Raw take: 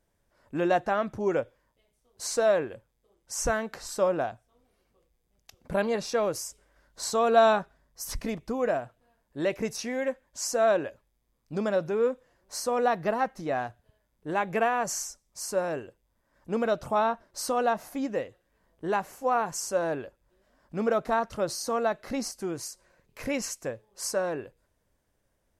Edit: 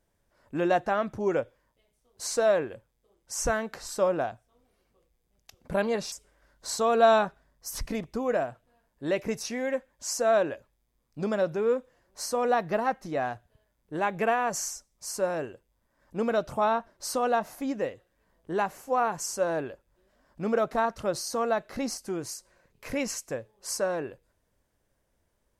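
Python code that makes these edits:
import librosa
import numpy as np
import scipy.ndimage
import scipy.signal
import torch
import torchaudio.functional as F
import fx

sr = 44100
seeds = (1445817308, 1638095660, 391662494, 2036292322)

y = fx.edit(x, sr, fx.cut(start_s=6.12, length_s=0.34), tone=tone)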